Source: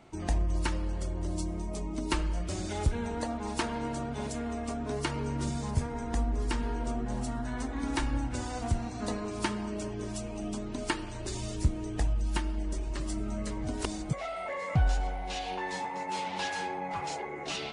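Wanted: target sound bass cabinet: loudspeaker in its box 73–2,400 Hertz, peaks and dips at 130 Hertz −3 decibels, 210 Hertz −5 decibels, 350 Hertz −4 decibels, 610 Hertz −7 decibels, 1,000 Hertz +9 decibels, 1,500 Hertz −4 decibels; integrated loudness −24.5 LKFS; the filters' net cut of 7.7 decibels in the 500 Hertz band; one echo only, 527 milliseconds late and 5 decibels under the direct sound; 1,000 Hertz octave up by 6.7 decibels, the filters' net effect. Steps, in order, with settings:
loudspeaker in its box 73–2,400 Hz, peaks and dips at 130 Hz −3 dB, 210 Hz −5 dB, 350 Hz −4 dB, 610 Hz −7 dB, 1,000 Hz +9 dB, 1,500 Hz −4 dB
parametric band 500 Hz −8.5 dB
parametric band 1,000 Hz +6.5 dB
single-tap delay 527 ms −5 dB
level +9 dB

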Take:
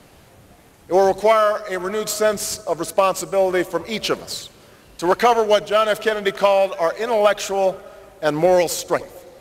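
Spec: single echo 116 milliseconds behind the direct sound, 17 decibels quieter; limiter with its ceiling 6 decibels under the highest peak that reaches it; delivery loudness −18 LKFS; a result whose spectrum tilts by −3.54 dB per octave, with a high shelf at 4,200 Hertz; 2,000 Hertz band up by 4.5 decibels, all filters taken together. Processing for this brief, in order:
parametric band 2,000 Hz +7 dB
high-shelf EQ 4,200 Hz −6 dB
brickwall limiter −8.5 dBFS
single-tap delay 116 ms −17 dB
level +2.5 dB

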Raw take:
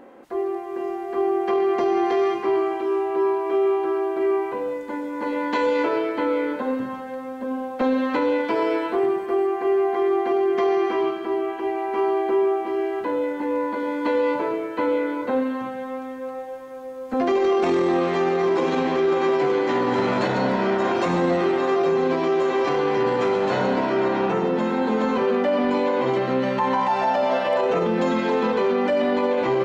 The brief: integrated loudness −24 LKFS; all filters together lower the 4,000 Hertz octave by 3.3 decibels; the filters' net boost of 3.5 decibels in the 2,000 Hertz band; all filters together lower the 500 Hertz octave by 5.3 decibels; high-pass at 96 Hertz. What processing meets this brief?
high-pass filter 96 Hz
parametric band 500 Hz −7.5 dB
parametric band 2,000 Hz +6.5 dB
parametric band 4,000 Hz −7.5 dB
level +1.5 dB

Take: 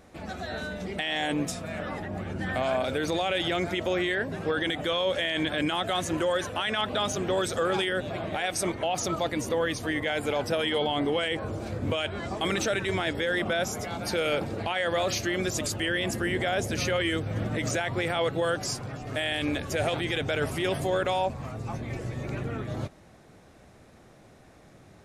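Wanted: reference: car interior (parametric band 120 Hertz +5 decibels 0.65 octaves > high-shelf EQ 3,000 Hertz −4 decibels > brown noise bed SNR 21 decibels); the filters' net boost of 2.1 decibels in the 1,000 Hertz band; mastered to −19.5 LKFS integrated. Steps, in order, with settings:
parametric band 120 Hz +5 dB 0.65 octaves
parametric band 1,000 Hz +3.5 dB
high-shelf EQ 3,000 Hz −4 dB
brown noise bed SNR 21 dB
level +8.5 dB

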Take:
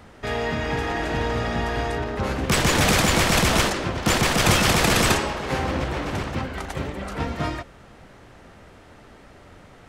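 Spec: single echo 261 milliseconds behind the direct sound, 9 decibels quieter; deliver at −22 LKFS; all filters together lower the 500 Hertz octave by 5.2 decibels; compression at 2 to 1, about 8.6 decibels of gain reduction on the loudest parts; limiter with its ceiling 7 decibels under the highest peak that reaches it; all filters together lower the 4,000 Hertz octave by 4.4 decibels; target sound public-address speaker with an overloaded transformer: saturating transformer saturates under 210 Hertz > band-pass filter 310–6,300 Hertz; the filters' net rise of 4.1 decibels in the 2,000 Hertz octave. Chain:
parametric band 500 Hz −6 dB
parametric band 2,000 Hz +7.5 dB
parametric band 4,000 Hz −8.5 dB
downward compressor 2 to 1, threshold −31 dBFS
brickwall limiter −21.5 dBFS
single-tap delay 261 ms −9 dB
saturating transformer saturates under 210 Hz
band-pass filter 310–6,300 Hz
level +11.5 dB

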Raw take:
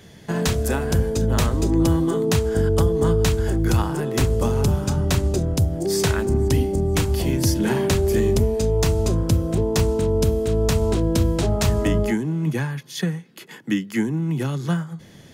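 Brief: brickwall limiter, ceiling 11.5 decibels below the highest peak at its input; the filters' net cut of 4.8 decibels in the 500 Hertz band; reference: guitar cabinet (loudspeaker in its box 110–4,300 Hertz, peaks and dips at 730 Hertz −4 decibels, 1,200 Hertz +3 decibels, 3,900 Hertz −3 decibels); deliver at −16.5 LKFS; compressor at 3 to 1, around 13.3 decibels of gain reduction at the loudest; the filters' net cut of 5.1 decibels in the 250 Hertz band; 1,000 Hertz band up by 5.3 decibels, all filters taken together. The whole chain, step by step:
parametric band 250 Hz −6 dB
parametric band 500 Hz −5 dB
parametric band 1,000 Hz +8 dB
downward compressor 3 to 1, threshold −34 dBFS
brickwall limiter −29.5 dBFS
loudspeaker in its box 110–4,300 Hz, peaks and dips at 730 Hz −4 dB, 1,200 Hz +3 dB, 3,900 Hz −3 dB
level +24 dB

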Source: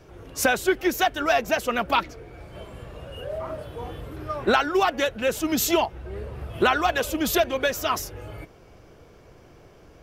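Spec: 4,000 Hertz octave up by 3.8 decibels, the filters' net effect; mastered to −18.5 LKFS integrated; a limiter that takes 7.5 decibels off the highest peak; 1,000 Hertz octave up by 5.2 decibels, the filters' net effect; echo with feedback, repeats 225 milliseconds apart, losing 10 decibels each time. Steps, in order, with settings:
parametric band 1,000 Hz +7 dB
parametric band 4,000 Hz +4.5 dB
brickwall limiter −11.5 dBFS
repeating echo 225 ms, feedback 32%, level −10 dB
level +5 dB

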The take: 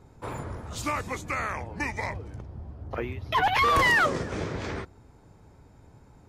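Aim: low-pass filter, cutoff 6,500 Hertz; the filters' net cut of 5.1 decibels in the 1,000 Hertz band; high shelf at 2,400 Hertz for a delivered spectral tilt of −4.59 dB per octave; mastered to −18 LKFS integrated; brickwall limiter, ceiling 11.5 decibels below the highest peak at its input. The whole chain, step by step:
low-pass filter 6,500 Hz
parametric band 1,000 Hz −7 dB
high-shelf EQ 2,400 Hz +3 dB
level +17 dB
brickwall limiter −8 dBFS

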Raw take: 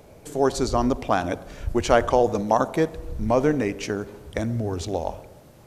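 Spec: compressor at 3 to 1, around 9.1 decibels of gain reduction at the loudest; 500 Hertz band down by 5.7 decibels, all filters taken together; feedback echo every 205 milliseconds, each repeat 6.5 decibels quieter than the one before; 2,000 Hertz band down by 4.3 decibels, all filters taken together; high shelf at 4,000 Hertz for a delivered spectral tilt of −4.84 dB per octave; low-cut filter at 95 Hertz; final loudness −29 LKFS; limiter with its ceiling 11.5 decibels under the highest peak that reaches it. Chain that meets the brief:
high-pass filter 95 Hz
parametric band 500 Hz −7 dB
parametric band 2,000 Hz −7 dB
high-shelf EQ 4,000 Hz +7 dB
downward compressor 3 to 1, threshold −29 dBFS
brickwall limiter −26.5 dBFS
repeating echo 205 ms, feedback 47%, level −6.5 dB
level +7.5 dB

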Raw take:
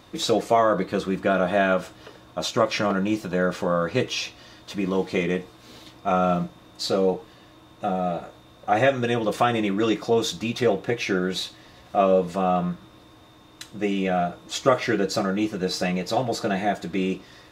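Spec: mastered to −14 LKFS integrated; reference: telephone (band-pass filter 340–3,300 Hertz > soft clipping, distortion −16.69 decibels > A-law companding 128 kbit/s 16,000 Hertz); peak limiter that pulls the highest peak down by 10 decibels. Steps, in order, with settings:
brickwall limiter −14.5 dBFS
band-pass filter 340–3,300 Hz
soft clipping −20 dBFS
level +16.5 dB
A-law companding 128 kbit/s 16,000 Hz

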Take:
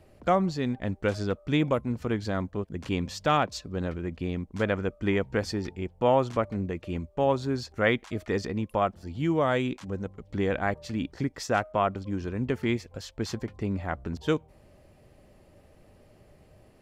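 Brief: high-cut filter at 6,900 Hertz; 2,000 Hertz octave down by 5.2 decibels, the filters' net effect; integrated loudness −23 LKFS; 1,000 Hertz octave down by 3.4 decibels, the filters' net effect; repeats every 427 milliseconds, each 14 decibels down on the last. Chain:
low-pass filter 6,900 Hz
parametric band 1,000 Hz −3.5 dB
parametric band 2,000 Hz −5.5 dB
repeating echo 427 ms, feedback 20%, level −14 dB
level +7 dB

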